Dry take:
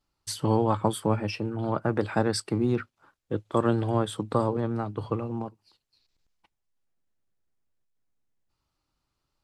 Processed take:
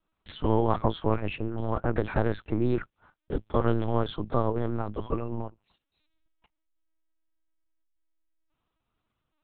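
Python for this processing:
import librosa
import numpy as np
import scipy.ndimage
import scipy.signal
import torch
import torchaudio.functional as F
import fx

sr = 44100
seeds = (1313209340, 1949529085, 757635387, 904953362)

y = fx.lpc_vocoder(x, sr, seeds[0], excitation='pitch_kept', order=8)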